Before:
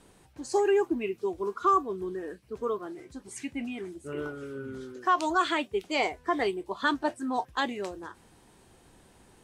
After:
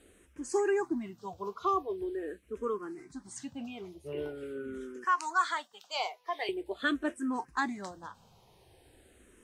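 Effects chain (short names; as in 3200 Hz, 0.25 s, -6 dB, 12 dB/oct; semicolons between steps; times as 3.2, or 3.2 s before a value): 5.04–6.49 HPF 860 Hz 12 dB/oct; endless phaser -0.44 Hz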